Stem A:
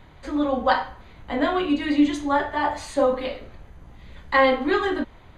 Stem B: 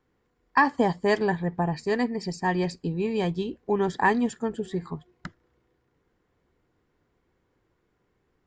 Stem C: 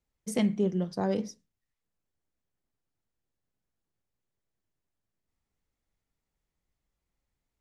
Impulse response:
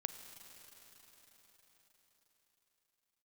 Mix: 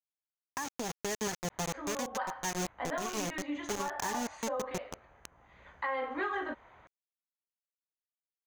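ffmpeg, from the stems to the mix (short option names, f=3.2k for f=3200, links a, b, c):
-filter_complex "[0:a]highpass=47,acrossover=split=530 2400:gain=0.178 1 0.0891[a][b][c];[a][b][c]amix=inputs=3:normalize=0,adelay=1500,volume=-1.5dB[d];[1:a]acrusher=bits=3:mix=0:aa=0.000001,volume=-4dB[e];[d][e]amix=inputs=2:normalize=0,equalizer=f=6.4k:t=o:w=0.33:g=14.5,acompressor=threshold=-24dB:ratio=4,volume=0dB,alimiter=limit=-23.5dB:level=0:latency=1:release=483"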